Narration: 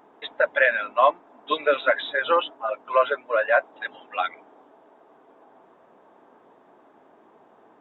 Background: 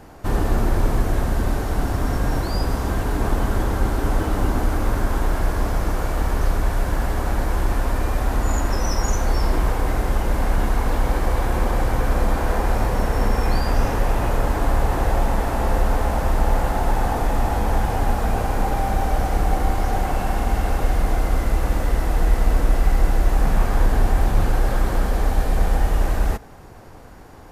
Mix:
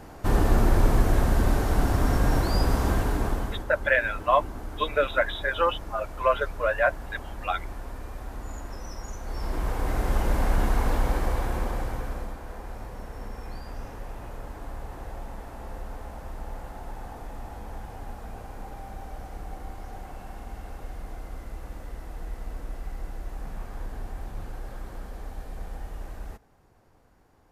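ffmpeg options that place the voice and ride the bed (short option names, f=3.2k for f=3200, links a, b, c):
-filter_complex "[0:a]adelay=3300,volume=-3dB[a];[1:a]volume=12dB,afade=t=out:st=2.88:d=0.77:silence=0.16788,afade=t=in:st=9.22:d=0.98:silence=0.223872,afade=t=out:st=10.85:d=1.53:silence=0.177828[b];[a][b]amix=inputs=2:normalize=0"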